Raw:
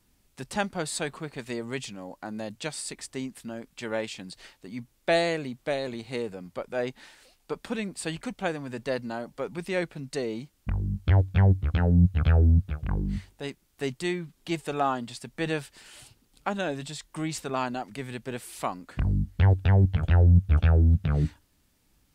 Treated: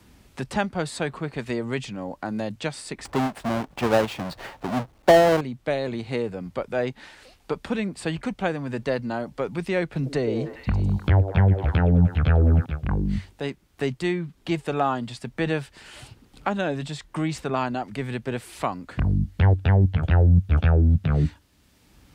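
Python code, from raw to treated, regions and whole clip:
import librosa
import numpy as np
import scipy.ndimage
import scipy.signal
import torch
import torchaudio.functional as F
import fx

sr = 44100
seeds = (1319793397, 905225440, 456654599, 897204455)

y = fx.chain(x, sr, fx.halfwave_hold(),
    fx.peak_eq(hz=770.0, db=8.0, octaves=1.6), at=(3.05, 5.41))
y = fx.chain(y, sr, fx.echo_stepped(ms=101, hz=460.0, octaves=0.7, feedback_pct=70, wet_db=-3.5),
    fx.band_squash(depth_pct=40), at=(9.92, 12.66))
y = scipy.signal.sosfilt(scipy.signal.butter(2, 41.0, 'highpass', fs=sr, output='sos'), y)
y = fx.high_shelf(y, sr, hz=5700.0, db=-11.0)
y = fx.band_squash(y, sr, depth_pct=40)
y = F.gain(torch.from_numpy(y), 4.0).numpy()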